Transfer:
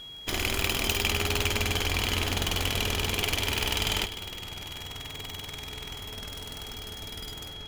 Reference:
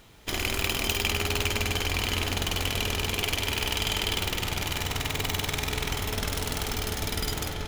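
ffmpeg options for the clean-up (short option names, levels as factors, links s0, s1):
-af "adeclick=t=4,bandreject=f=3300:w=30,asetnsamples=n=441:p=0,asendcmd='4.06 volume volume 11dB',volume=1"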